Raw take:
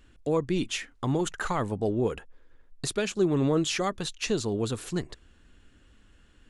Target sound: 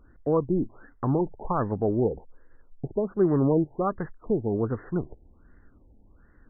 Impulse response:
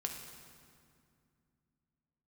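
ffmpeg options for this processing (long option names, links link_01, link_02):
-af "afftfilt=real='re*lt(b*sr/1024,870*pow(2100/870,0.5+0.5*sin(2*PI*1.3*pts/sr)))':imag='im*lt(b*sr/1024,870*pow(2100/870,0.5+0.5*sin(2*PI*1.3*pts/sr)))':win_size=1024:overlap=0.75,volume=2.5dB"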